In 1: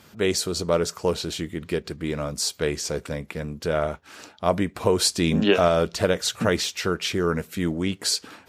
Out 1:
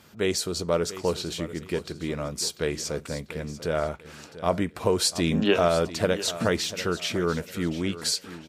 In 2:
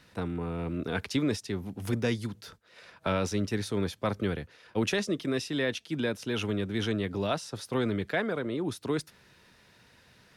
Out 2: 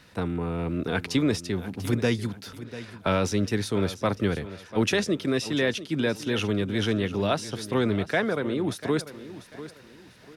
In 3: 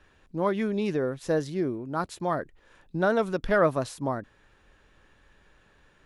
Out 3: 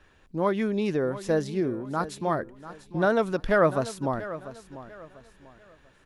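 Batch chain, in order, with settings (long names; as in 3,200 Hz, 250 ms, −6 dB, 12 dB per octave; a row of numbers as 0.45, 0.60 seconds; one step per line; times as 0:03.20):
repeating echo 693 ms, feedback 31%, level −14.5 dB
loudness normalisation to −27 LKFS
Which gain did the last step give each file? −2.5, +4.5, +1.0 decibels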